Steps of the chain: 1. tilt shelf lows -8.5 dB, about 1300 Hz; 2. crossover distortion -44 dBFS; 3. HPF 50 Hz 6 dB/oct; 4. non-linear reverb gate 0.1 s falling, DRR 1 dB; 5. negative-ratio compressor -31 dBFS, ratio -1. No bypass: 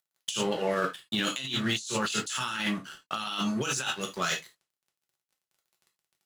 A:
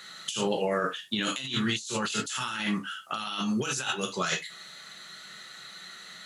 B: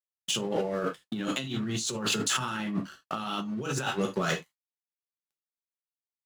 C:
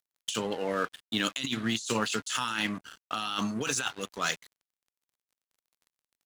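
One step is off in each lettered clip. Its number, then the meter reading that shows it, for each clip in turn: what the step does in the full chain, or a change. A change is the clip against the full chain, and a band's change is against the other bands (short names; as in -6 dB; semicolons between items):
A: 2, distortion -19 dB; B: 1, 125 Hz band +3.5 dB; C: 4, crest factor change +2.5 dB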